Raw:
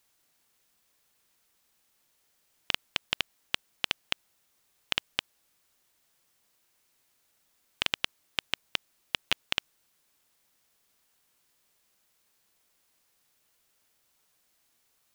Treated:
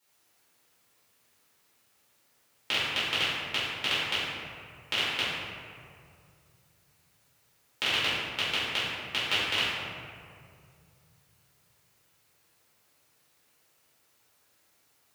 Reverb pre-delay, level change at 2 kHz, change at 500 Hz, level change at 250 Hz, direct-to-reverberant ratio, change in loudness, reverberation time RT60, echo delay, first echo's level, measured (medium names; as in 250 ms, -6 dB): 6 ms, +5.5 dB, +7.5 dB, +6.5 dB, -11.5 dB, +4.0 dB, 2.2 s, no echo, no echo